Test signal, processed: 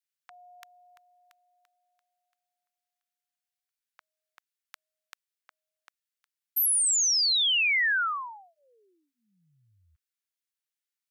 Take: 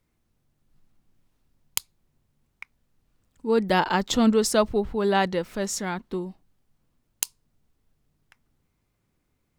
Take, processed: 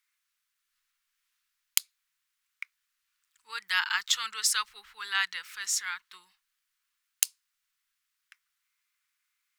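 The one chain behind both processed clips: inverse Chebyshev high-pass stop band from 680 Hz, stop band 40 dB; gain +2 dB

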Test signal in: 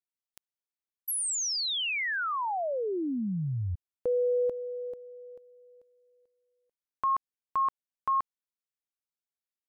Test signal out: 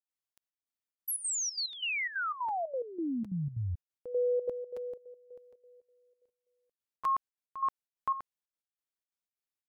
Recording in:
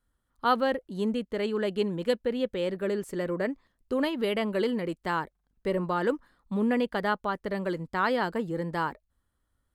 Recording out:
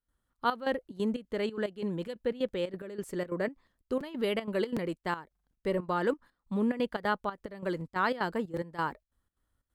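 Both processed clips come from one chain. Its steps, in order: step gate ".xxx.x..xxx.xx" 181 bpm -12 dB; crackling interface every 0.76 s, samples 256, repeat, from 0.96; gain -2 dB

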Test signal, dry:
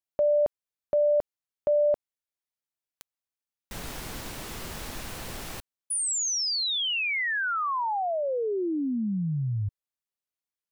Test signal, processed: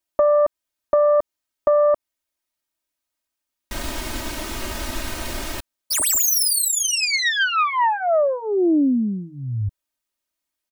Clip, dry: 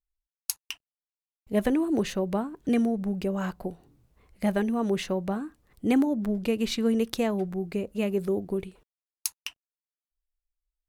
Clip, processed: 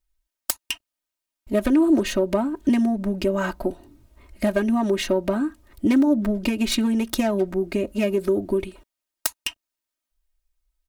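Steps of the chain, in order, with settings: self-modulated delay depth 0.18 ms; compressor, threshold -26 dBFS; comb 3.2 ms, depth 99%; gain +7 dB

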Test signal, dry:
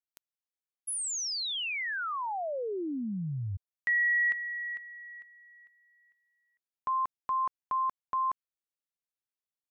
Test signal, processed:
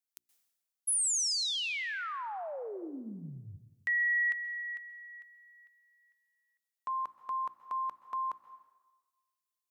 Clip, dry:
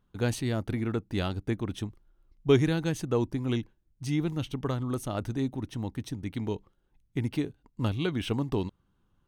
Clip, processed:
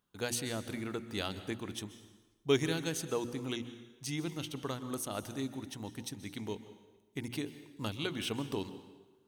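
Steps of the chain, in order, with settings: HPF 200 Hz 6 dB/oct; high shelf 3300 Hz +11 dB; notches 60/120/180/240/300/360 Hz; plate-style reverb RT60 1.2 s, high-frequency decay 0.85×, pre-delay 0.115 s, DRR 12.5 dB; gain -5.5 dB

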